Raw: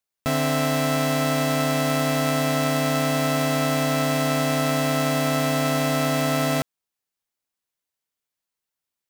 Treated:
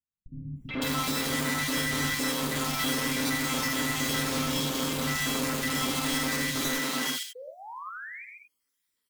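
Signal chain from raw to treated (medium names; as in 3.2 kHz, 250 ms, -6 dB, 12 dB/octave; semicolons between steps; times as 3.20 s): random holes in the spectrogram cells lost 59%; tilt shelf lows -3.5 dB; doubling 48 ms -3 dB; small resonant body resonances 240/2000/3200 Hz, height 10 dB, ringing for 20 ms; valve stage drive 35 dB, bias 0.7; painted sound rise, 6.92–7.82 s, 480–2500 Hz -48 dBFS; peaking EQ 690 Hz -12.5 dB 0.3 oct; three bands offset in time lows, mids, highs 430/560 ms, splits 180/2600 Hz; gated-style reverb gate 110 ms rising, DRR 4.5 dB; trim +8 dB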